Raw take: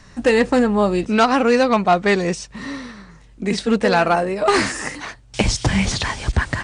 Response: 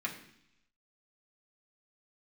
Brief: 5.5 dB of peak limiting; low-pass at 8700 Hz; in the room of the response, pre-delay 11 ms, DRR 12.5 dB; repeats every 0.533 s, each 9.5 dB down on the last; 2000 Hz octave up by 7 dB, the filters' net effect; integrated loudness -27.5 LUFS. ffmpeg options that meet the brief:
-filter_complex "[0:a]lowpass=8.7k,equalizer=f=2k:t=o:g=8.5,alimiter=limit=-5dB:level=0:latency=1,aecho=1:1:533|1066|1599|2132:0.335|0.111|0.0365|0.012,asplit=2[a][b];[1:a]atrim=start_sample=2205,adelay=11[c];[b][c]afir=irnorm=-1:irlink=0,volume=-16dB[d];[a][d]amix=inputs=2:normalize=0,volume=-10dB"

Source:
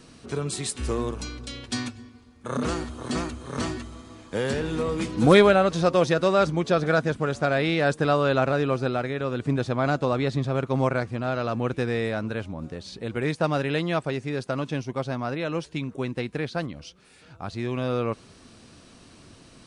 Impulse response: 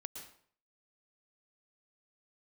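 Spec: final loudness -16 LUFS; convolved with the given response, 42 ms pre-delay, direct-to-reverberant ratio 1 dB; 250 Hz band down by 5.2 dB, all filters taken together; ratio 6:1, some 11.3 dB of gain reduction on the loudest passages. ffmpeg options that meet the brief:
-filter_complex "[0:a]equalizer=f=250:t=o:g=-7.5,acompressor=threshold=-25dB:ratio=6,asplit=2[a][b];[1:a]atrim=start_sample=2205,adelay=42[c];[b][c]afir=irnorm=-1:irlink=0,volume=2dB[d];[a][d]amix=inputs=2:normalize=0,volume=13dB"

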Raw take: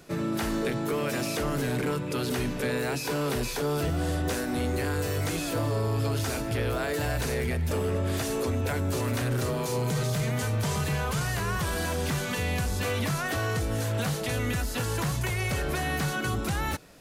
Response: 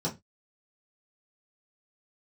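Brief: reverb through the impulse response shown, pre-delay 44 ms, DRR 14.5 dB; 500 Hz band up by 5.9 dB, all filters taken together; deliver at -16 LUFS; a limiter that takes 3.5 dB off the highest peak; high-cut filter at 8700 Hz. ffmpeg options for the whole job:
-filter_complex "[0:a]lowpass=8.7k,equalizer=f=500:t=o:g=7,alimiter=limit=-19dB:level=0:latency=1,asplit=2[a][b];[1:a]atrim=start_sample=2205,adelay=44[c];[b][c]afir=irnorm=-1:irlink=0,volume=-20.5dB[d];[a][d]amix=inputs=2:normalize=0,volume=11dB"

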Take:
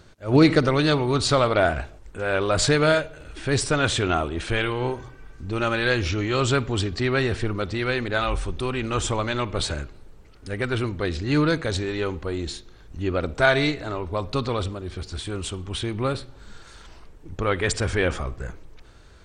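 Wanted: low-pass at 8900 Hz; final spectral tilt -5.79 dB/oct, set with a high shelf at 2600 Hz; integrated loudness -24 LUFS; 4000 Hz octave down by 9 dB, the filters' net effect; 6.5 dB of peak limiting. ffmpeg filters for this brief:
-af "lowpass=8.9k,highshelf=f=2.6k:g=-4,equalizer=f=4k:t=o:g=-7.5,volume=2dB,alimiter=limit=-10.5dB:level=0:latency=1"

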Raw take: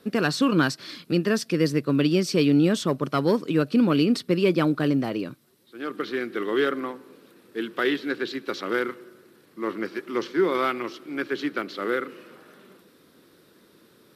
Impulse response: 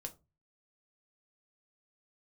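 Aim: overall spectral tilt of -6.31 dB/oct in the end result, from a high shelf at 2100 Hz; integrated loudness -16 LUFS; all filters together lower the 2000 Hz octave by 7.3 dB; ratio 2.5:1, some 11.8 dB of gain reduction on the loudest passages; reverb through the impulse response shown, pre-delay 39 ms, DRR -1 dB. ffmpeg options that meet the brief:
-filter_complex "[0:a]equalizer=f=2k:t=o:g=-8.5,highshelf=f=2.1k:g=-3.5,acompressor=threshold=-35dB:ratio=2.5,asplit=2[a][b];[1:a]atrim=start_sample=2205,adelay=39[c];[b][c]afir=irnorm=-1:irlink=0,volume=4.5dB[d];[a][d]amix=inputs=2:normalize=0,volume=15dB"

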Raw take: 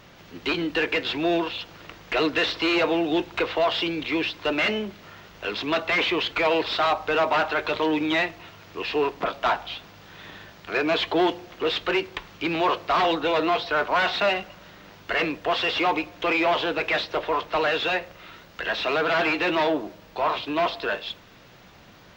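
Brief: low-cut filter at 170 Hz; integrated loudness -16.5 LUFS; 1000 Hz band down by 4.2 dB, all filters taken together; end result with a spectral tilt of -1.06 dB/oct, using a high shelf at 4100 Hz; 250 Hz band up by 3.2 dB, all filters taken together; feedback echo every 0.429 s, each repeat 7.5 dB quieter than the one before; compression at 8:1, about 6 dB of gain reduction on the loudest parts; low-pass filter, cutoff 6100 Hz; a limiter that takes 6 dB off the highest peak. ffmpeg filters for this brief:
-af "highpass=170,lowpass=6.1k,equalizer=f=250:t=o:g=6,equalizer=f=1k:t=o:g=-6.5,highshelf=f=4.1k:g=5,acompressor=threshold=-23dB:ratio=8,alimiter=limit=-20.5dB:level=0:latency=1,aecho=1:1:429|858|1287|1716|2145:0.422|0.177|0.0744|0.0312|0.0131,volume=12dB"

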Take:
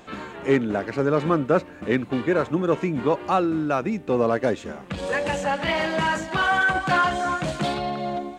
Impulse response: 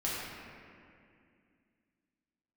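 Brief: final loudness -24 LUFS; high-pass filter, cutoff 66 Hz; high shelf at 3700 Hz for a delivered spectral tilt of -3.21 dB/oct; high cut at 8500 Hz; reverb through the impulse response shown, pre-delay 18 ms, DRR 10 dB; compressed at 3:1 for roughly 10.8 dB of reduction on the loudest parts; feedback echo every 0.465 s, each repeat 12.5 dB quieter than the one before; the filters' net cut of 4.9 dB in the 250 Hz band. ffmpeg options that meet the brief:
-filter_complex "[0:a]highpass=66,lowpass=8.5k,equalizer=f=250:t=o:g=-7,highshelf=f=3.7k:g=4,acompressor=threshold=-32dB:ratio=3,aecho=1:1:465|930|1395:0.237|0.0569|0.0137,asplit=2[a][b];[1:a]atrim=start_sample=2205,adelay=18[c];[b][c]afir=irnorm=-1:irlink=0,volume=-16.5dB[d];[a][d]amix=inputs=2:normalize=0,volume=8.5dB"

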